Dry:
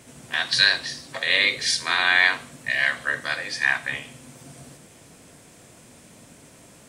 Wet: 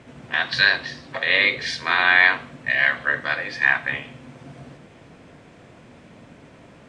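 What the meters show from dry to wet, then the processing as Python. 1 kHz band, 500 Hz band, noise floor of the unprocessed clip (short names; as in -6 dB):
+4.0 dB, +4.0 dB, -50 dBFS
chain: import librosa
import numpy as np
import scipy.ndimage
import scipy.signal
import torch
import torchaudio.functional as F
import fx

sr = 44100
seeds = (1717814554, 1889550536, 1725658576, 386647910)

y = scipy.signal.sosfilt(scipy.signal.butter(2, 2700.0, 'lowpass', fs=sr, output='sos'), x)
y = y * librosa.db_to_amplitude(4.0)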